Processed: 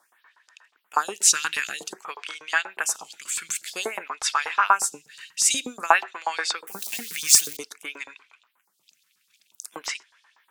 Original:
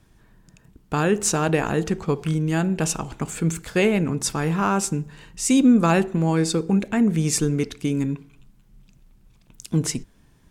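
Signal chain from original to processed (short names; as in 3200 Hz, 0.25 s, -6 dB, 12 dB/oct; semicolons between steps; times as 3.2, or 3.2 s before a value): 6.67–7.57 switching spikes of -23.5 dBFS; LFO high-pass saw up 8.3 Hz 870–5100 Hz; photocell phaser 0.52 Hz; gain +5.5 dB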